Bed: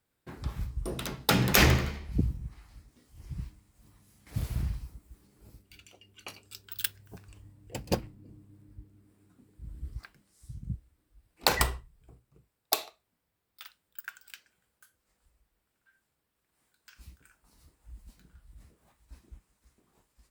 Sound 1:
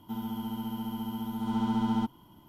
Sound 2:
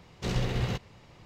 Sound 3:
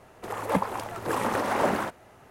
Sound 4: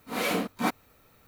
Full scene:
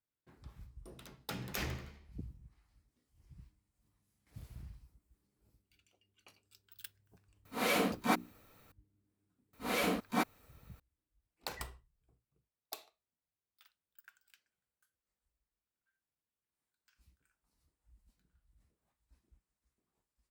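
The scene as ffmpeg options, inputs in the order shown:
-filter_complex "[4:a]asplit=2[s0][s1];[0:a]volume=0.126[s2];[s0]bandreject=f=60:t=h:w=6,bandreject=f=120:t=h:w=6,bandreject=f=180:t=h:w=6,bandreject=f=240:t=h:w=6,bandreject=f=300:t=h:w=6,bandreject=f=360:t=h:w=6,bandreject=f=420:t=h:w=6,atrim=end=1.27,asetpts=PTS-STARTPTS,volume=0.708,afade=t=in:d=0.004:c=hsin,afade=t=out:st=1.266:d=0.004:c=hsin,adelay=7450[s3];[s1]atrim=end=1.27,asetpts=PTS-STARTPTS,volume=0.562,afade=t=in:d=0.004:c=hsin,afade=t=out:st=1.266:d=0.004:c=hsin,adelay=9530[s4];[s2][s3][s4]amix=inputs=3:normalize=0"

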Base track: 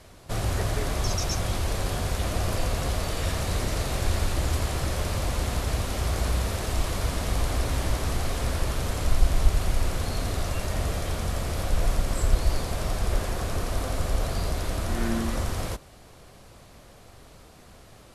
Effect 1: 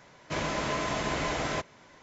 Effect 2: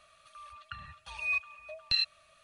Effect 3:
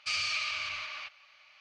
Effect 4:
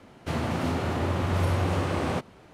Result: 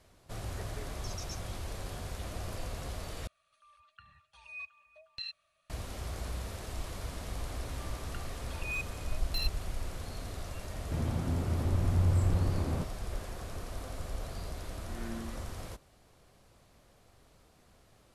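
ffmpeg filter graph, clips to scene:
-filter_complex "[2:a]asplit=2[s0][s1];[0:a]volume=0.237[s2];[s1]asoftclip=type=hard:threshold=0.0422[s3];[4:a]aemphasis=mode=reproduction:type=riaa[s4];[s2]asplit=2[s5][s6];[s5]atrim=end=3.274[s7];[s0]atrim=end=2.43,asetpts=PTS-STARTPTS,volume=0.224[s8];[s6]atrim=start=5.696[s9];[s3]atrim=end=2.43,asetpts=PTS-STARTPTS,volume=0.531,afade=t=in:d=0.004:c=hsin,afade=t=out:st=2.426:d=0.004:c=hsin,adelay=7430[s10];[s4]atrim=end=2.53,asetpts=PTS-STARTPTS,volume=0.2,afade=t=in:d=0.004:c=hsin,afade=t=out:st=2.526:d=0.004:c=hsin,adelay=10640[s11];[s7][s8]acrossfade=d=0.004:c1=hsin:c2=hsin[s12];[s12][s9]acrossfade=d=0.004:c1=hsin:c2=hsin[s13];[s13][s10][s11]amix=inputs=3:normalize=0"

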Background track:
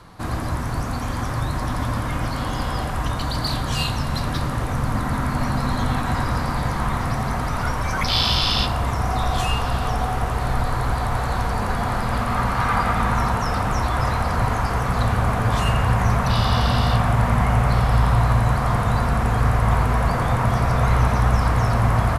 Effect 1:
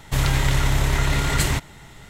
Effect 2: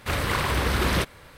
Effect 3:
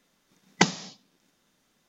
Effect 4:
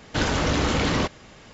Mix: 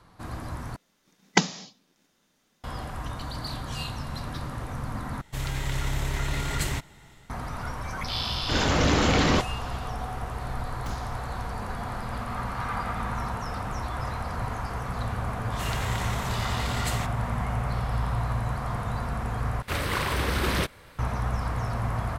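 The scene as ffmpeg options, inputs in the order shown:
-filter_complex "[3:a]asplit=2[s0][s1];[1:a]asplit=2[s2][s3];[0:a]volume=0.299[s4];[s2]dynaudnorm=f=320:g=3:m=1.58[s5];[4:a]dynaudnorm=f=140:g=3:m=3.55[s6];[s1]aeval=exprs='(tanh(44.7*val(0)+0.75)-tanh(0.75))/44.7':c=same[s7];[s3]highpass=f=330:w=0.5412,highpass=f=330:w=1.3066[s8];[s4]asplit=4[s9][s10][s11][s12];[s9]atrim=end=0.764[s13];[s0]atrim=end=1.88[s14];[s10]atrim=start=2.636:end=5.214[s15];[s5]atrim=end=2.09,asetpts=PTS-STARTPTS,volume=0.282[s16];[s11]atrim=start=7.296:end=19.624[s17];[2:a]atrim=end=1.37,asetpts=PTS-STARTPTS,volume=0.75[s18];[s12]atrim=start=20.986[s19];[s6]atrim=end=1.53,asetpts=PTS-STARTPTS,volume=0.398,afade=t=in:d=0.004:c=hsin,afade=t=out:st=1.526:d=0.004:c=hsin,adelay=367794S[s20];[s7]atrim=end=1.88,asetpts=PTS-STARTPTS,volume=0.473,afade=t=in:d=0.004:c=hsin,afade=t=out:st=1.876:d=0.004:c=hsin,adelay=10250[s21];[s8]atrim=end=2.09,asetpts=PTS-STARTPTS,volume=0.355,afade=t=in:d=0.004:c=hsin,afade=t=out:st=2.086:d=0.004:c=hsin,adelay=15470[s22];[s13][s14]acrossfade=d=0.004:c1=hsin:c2=hsin[s23];[s23][s15]acrossfade=d=0.004:c1=hsin:c2=hsin[s24];[s24][s16]acrossfade=d=0.004:c1=hsin:c2=hsin[s25];[s25][s17]acrossfade=d=0.004:c1=hsin:c2=hsin[s26];[s26][s18]acrossfade=d=0.004:c1=hsin:c2=hsin[s27];[s27][s19]acrossfade=d=0.004:c1=hsin:c2=hsin[s28];[s28][s20][s21][s22]amix=inputs=4:normalize=0"

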